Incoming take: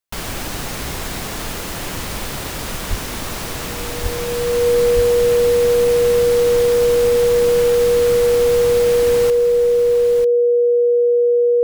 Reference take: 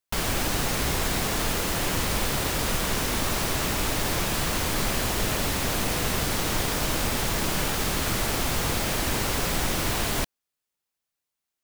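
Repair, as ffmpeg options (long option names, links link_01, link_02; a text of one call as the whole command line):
ffmpeg -i in.wav -filter_complex "[0:a]bandreject=frequency=480:width=30,asplit=3[link_01][link_02][link_03];[link_01]afade=type=out:start_time=2.89:duration=0.02[link_04];[link_02]highpass=frequency=140:width=0.5412,highpass=frequency=140:width=1.3066,afade=type=in:start_time=2.89:duration=0.02,afade=type=out:start_time=3.01:duration=0.02[link_05];[link_03]afade=type=in:start_time=3.01:duration=0.02[link_06];[link_04][link_05][link_06]amix=inputs=3:normalize=0,asplit=3[link_07][link_08][link_09];[link_07]afade=type=out:start_time=4.02:duration=0.02[link_10];[link_08]highpass=frequency=140:width=0.5412,highpass=frequency=140:width=1.3066,afade=type=in:start_time=4.02:duration=0.02,afade=type=out:start_time=4.14:duration=0.02[link_11];[link_09]afade=type=in:start_time=4.14:duration=0.02[link_12];[link_10][link_11][link_12]amix=inputs=3:normalize=0,asplit=3[link_13][link_14][link_15];[link_13]afade=type=out:start_time=4.95:duration=0.02[link_16];[link_14]highpass=frequency=140:width=0.5412,highpass=frequency=140:width=1.3066,afade=type=in:start_time=4.95:duration=0.02,afade=type=out:start_time=5.07:duration=0.02[link_17];[link_15]afade=type=in:start_time=5.07:duration=0.02[link_18];[link_16][link_17][link_18]amix=inputs=3:normalize=0,asetnsamples=nb_out_samples=441:pad=0,asendcmd='9.3 volume volume 9.5dB',volume=0dB" out.wav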